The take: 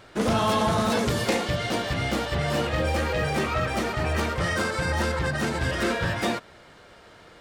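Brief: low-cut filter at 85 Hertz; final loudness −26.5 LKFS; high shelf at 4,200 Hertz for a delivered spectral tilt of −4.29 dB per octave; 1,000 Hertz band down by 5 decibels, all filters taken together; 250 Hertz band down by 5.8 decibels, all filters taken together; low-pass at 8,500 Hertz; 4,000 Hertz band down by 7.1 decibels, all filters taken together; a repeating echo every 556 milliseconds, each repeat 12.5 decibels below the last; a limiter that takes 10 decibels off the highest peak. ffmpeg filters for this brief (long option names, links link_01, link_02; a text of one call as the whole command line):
ffmpeg -i in.wav -af "highpass=85,lowpass=8500,equalizer=frequency=250:width_type=o:gain=-7.5,equalizer=frequency=1000:width_type=o:gain=-5.5,equalizer=frequency=4000:width_type=o:gain=-6,highshelf=frequency=4200:gain=-5.5,alimiter=level_in=2.5dB:limit=-24dB:level=0:latency=1,volume=-2.5dB,aecho=1:1:556|1112|1668:0.237|0.0569|0.0137,volume=8dB" out.wav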